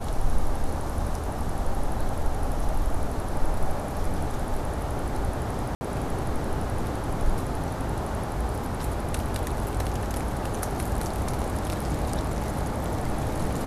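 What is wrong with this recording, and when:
5.75–5.81 gap 60 ms

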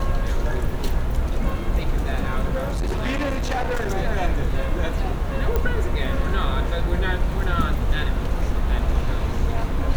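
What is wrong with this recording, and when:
2.55–3.9 clipped -20 dBFS
5.56 pop -10 dBFS

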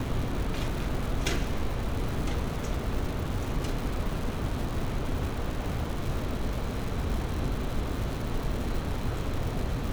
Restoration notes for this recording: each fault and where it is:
crackle 290/s -33 dBFS

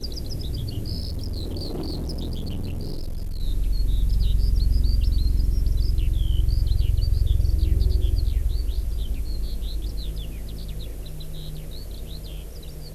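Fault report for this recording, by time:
1.01–3.43 clipped -25.5 dBFS

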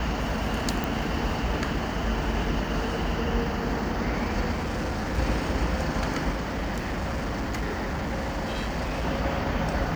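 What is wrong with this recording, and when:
0.84 pop
4.51–5.19 clipped -25 dBFS
6.31–9.05 clipped -25.5 dBFS

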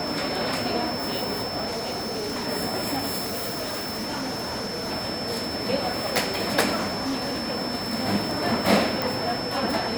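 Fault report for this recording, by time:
tone 5300 Hz -32 dBFS
1.67–2.48 clipped -26 dBFS
3.24–4.92 clipped -26.5 dBFS
6.76–7.49 clipped -23.5 dBFS
9.02 pop

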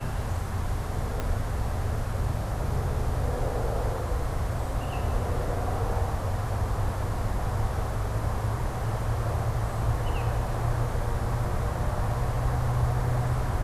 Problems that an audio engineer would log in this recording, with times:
1.2 pop -16 dBFS

